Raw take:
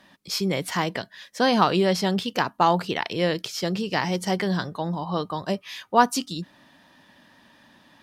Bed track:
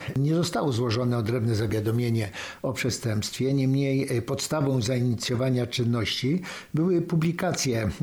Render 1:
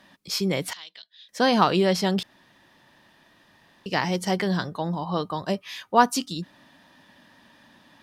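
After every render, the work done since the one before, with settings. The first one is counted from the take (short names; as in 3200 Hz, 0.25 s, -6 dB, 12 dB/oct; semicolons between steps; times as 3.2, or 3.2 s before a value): 0.73–1.29 band-pass 3700 Hz, Q 5.4; 2.23–3.86 room tone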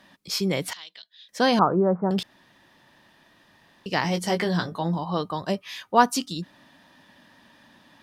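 1.59–2.11 steep low-pass 1400 Hz 48 dB/oct; 4.03–4.99 doubler 18 ms -6 dB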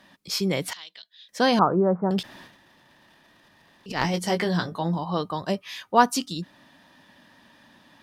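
2.21–4.14 transient shaper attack -10 dB, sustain +12 dB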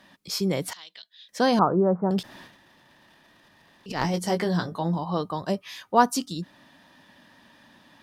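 dynamic EQ 2600 Hz, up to -6 dB, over -41 dBFS, Q 0.89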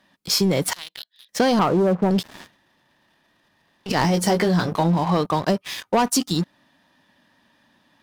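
sample leveller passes 3; compressor 6:1, threshold -16 dBFS, peak gain reduction 8 dB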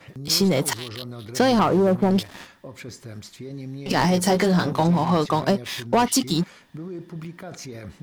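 add bed track -11.5 dB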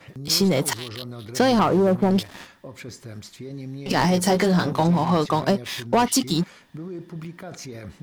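nothing audible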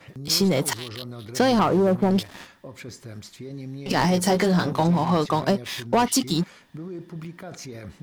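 gain -1 dB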